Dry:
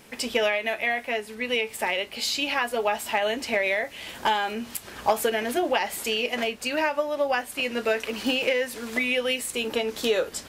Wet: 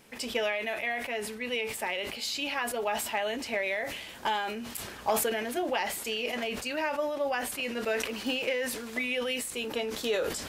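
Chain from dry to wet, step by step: sustainer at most 46 dB/s; gain -6.5 dB

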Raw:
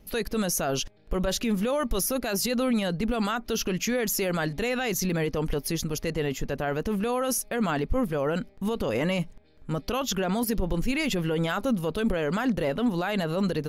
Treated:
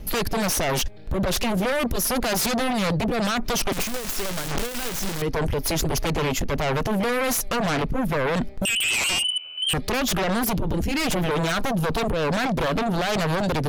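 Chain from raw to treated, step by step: low shelf 82 Hz +8.5 dB; 3.72–5.22 fuzz box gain 49 dB, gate -54 dBFS; compressor 6:1, threshold -25 dBFS, peak gain reduction 11 dB; 8.65–9.74 inverted band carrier 3000 Hz; sine folder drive 13 dB, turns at -16 dBFS; record warp 78 rpm, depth 100 cents; gain -4 dB

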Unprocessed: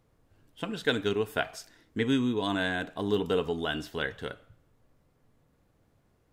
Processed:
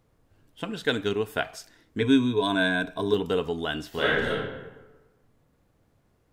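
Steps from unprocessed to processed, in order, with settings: 2–3.14 ripple EQ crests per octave 1.6, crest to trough 12 dB; 3.89–4.3 reverb throw, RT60 1.2 s, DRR -8.5 dB; gain +1.5 dB

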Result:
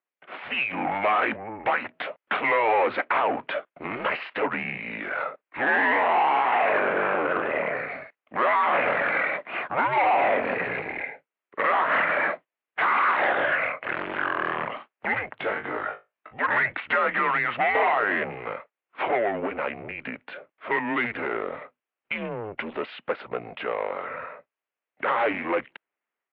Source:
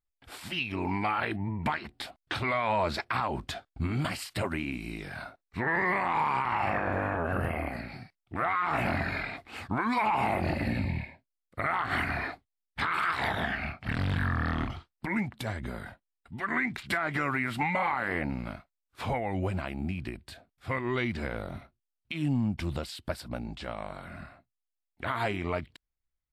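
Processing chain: AGC gain up to 5 dB; soft clip -26 dBFS, distortion -9 dB; 15.38–16.33 flutter echo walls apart 3.3 m, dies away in 0.21 s; mistuned SSB -110 Hz 430–2800 Hz; gain +8.5 dB

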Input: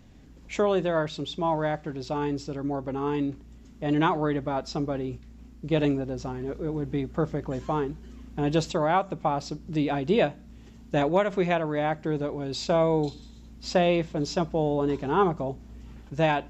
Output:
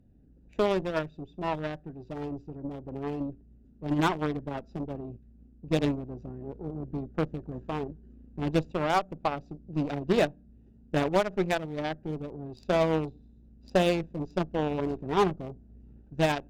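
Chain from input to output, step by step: Wiener smoothing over 41 samples; added harmonics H 7 -22 dB, 8 -23 dB, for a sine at -10.5 dBFS; overloaded stage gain 15.5 dB

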